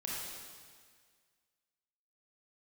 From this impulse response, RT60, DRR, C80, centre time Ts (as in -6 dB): 1.8 s, -5.5 dB, 0.0 dB, 0.115 s